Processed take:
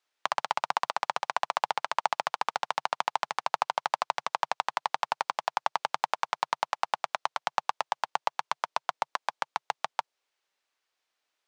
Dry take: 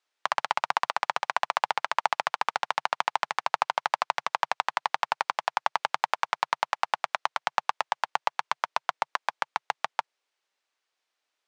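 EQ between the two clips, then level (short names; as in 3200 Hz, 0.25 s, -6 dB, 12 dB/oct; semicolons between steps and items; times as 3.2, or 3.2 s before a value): dynamic EQ 1900 Hz, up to -5 dB, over -42 dBFS, Q 0.88; 0.0 dB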